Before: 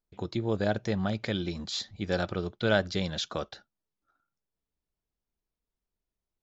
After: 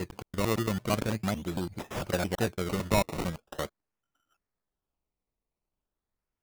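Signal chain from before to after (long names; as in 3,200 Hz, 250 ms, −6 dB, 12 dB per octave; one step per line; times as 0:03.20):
slices reordered back to front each 112 ms, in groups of 3
sample-and-hold swept by an LFO 19×, swing 100% 0.42 Hz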